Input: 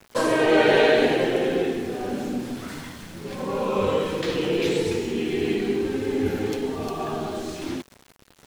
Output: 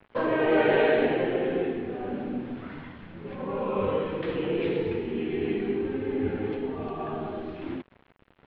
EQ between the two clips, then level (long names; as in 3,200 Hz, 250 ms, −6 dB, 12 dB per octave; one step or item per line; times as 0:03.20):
low-pass filter 3,200 Hz 24 dB per octave
high-frequency loss of the air 210 metres
−3.5 dB